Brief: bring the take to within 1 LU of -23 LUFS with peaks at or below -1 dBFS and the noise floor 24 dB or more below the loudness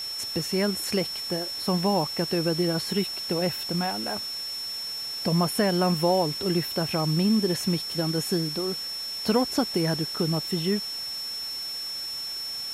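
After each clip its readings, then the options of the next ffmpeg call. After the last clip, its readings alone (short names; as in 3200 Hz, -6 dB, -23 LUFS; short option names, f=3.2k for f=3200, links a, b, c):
steady tone 5400 Hz; tone level -31 dBFS; noise floor -34 dBFS; noise floor target -51 dBFS; loudness -26.5 LUFS; peak -9.0 dBFS; loudness target -23.0 LUFS
-> -af "bandreject=f=5.4k:w=30"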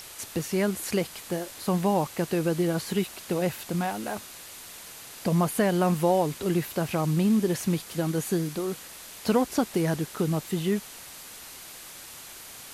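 steady tone none; noise floor -44 dBFS; noise floor target -52 dBFS
-> -af "afftdn=nr=8:nf=-44"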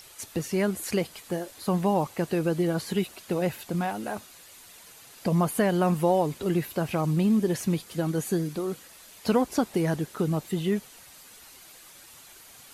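noise floor -50 dBFS; noise floor target -52 dBFS
-> -af "afftdn=nr=6:nf=-50"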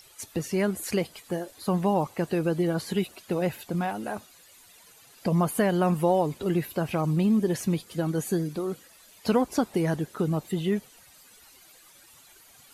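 noise floor -55 dBFS; loudness -27.5 LUFS; peak -10.0 dBFS; loudness target -23.0 LUFS
-> -af "volume=4.5dB"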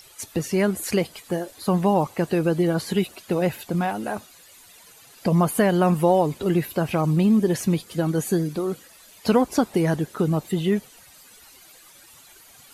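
loudness -23.0 LUFS; peak -5.5 dBFS; noise floor -50 dBFS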